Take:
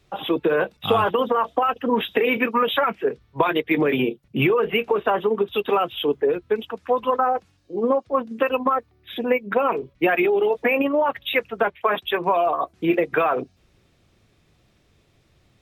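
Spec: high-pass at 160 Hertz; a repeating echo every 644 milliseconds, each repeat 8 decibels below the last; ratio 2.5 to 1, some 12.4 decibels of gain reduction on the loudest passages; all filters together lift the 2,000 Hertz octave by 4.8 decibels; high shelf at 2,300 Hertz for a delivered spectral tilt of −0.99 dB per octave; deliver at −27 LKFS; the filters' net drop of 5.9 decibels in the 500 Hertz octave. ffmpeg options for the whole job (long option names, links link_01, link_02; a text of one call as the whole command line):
ffmpeg -i in.wav -af "highpass=160,equalizer=frequency=500:width_type=o:gain=-7.5,equalizer=frequency=2000:width_type=o:gain=3.5,highshelf=frequency=2300:gain=5.5,acompressor=threshold=-34dB:ratio=2.5,aecho=1:1:644|1288|1932|2576|3220:0.398|0.159|0.0637|0.0255|0.0102,volume=5dB" out.wav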